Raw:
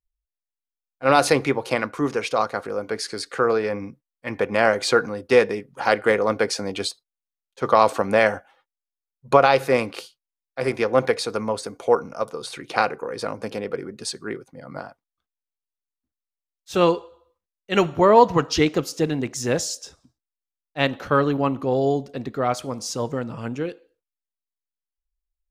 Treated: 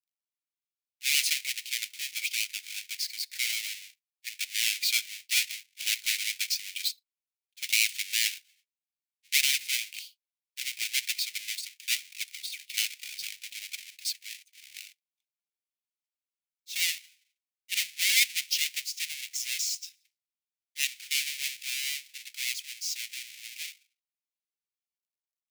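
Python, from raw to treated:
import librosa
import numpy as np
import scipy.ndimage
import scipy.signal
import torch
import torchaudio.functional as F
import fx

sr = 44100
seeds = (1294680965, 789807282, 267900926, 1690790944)

y = fx.halfwave_hold(x, sr)
y = scipy.signal.sosfilt(scipy.signal.ellip(4, 1.0, 50, 2200.0, 'highpass', fs=sr, output='sos'), y)
y = y * librosa.db_to_amplitude(-4.5)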